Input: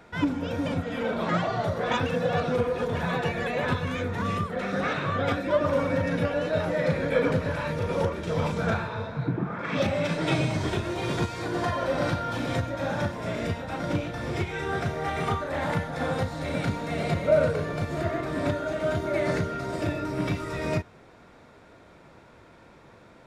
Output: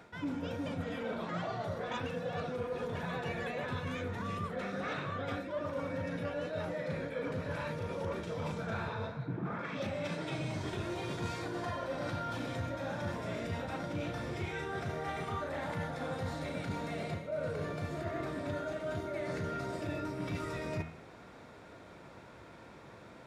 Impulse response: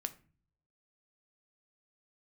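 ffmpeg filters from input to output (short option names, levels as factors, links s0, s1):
-af "highpass=56,bandreject=f=80.41:t=h:w=4,bandreject=f=160.82:t=h:w=4,bandreject=f=241.23:t=h:w=4,bandreject=f=321.64:t=h:w=4,bandreject=f=402.05:t=h:w=4,bandreject=f=482.46:t=h:w=4,bandreject=f=562.87:t=h:w=4,bandreject=f=643.28:t=h:w=4,bandreject=f=723.69:t=h:w=4,bandreject=f=804.1:t=h:w=4,bandreject=f=884.51:t=h:w=4,bandreject=f=964.92:t=h:w=4,bandreject=f=1045.33:t=h:w=4,bandreject=f=1125.74:t=h:w=4,bandreject=f=1206.15:t=h:w=4,bandreject=f=1286.56:t=h:w=4,bandreject=f=1366.97:t=h:w=4,bandreject=f=1447.38:t=h:w=4,bandreject=f=1527.79:t=h:w=4,bandreject=f=1608.2:t=h:w=4,bandreject=f=1688.61:t=h:w=4,bandreject=f=1769.02:t=h:w=4,bandreject=f=1849.43:t=h:w=4,bandreject=f=1929.84:t=h:w=4,bandreject=f=2010.25:t=h:w=4,bandreject=f=2090.66:t=h:w=4,bandreject=f=2171.07:t=h:w=4,bandreject=f=2251.48:t=h:w=4,bandreject=f=2331.89:t=h:w=4,bandreject=f=2412.3:t=h:w=4,bandreject=f=2492.71:t=h:w=4,bandreject=f=2573.12:t=h:w=4,bandreject=f=2653.53:t=h:w=4,bandreject=f=2733.94:t=h:w=4,bandreject=f=2814.35:t=h:w=4,bandreject=f=2894.76:t=h:w=4,bandreject=f=2975.17:t=h:w=4,bandreject=f=3055.58:t=h:w=4,bandreject=f=3135.99:t=h:w=4,areverse,acompressor=threshold=0.02:ratio=10,areverse"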